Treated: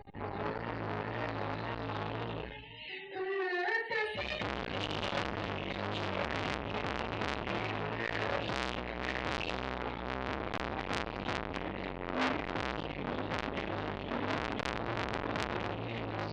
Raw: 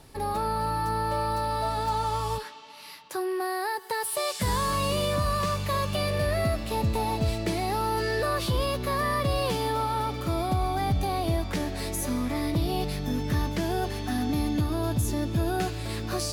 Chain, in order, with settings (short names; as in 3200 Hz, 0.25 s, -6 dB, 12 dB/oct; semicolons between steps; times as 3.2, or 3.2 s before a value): vibrato 1.9 Hz 85 cents; Bessel low-pass 3800 Hz, order 4; fixed phaser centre 2600 Hz, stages 4; reverb RT60 0.50 s, pre-delay 4 ms, DRR -2.5 dB; loudest bins only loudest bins 64; dynamic EQ 2500 Hz, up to +8 dB, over -53 dBFS, Q 1.9; pre-echo 0.263 s -16 dB; core saturation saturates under 3400 Hz; gain -4 dB